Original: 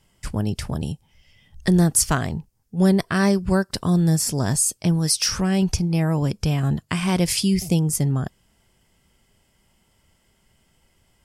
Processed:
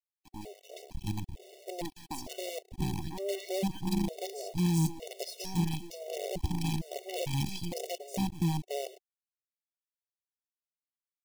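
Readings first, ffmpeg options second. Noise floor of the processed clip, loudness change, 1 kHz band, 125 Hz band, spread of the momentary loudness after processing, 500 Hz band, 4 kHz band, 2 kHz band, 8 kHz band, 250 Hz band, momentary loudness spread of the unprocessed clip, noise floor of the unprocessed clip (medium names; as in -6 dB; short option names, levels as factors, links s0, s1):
under -85 dBFS, -13.5 dB, -10.5 dB, -13.0 dB, 14 LU, -10.0 dB, -12.5 dB, -16.5 dB, -19.5 dB, -13.5 dB, 10 LU, -65 dBFS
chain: -filter_complex "[0:a]lowpass=3700,acrossover=split=260|1200[s0][s1][s2];[s2]adelay=180[s3];[s0]adelay=700[s4];[s4][s1][s3]amix=inputs=3:normalize=0,acrusher=bits=4:dc=4:mix=0:aa=0.000001,alimiter=limit=0.168:level=0:latency=1:release=20,asuperstop=centerf=1300:order=4:qfactor=0.72,equalizer=f=980:w=2.2:g=12,afftfilt=real='re*gt(sin(2*PI*1.1*pts/sr)*(1-2*mod(floor(b*sr/1024/380),2)),0)':imag='im*gt(sin(2*PI*1.1*pts/sr)*(1-2*mod(floor(b*sr/1024/380),2)),0)':win_size=1024:overlap=0.75,volume=0.596"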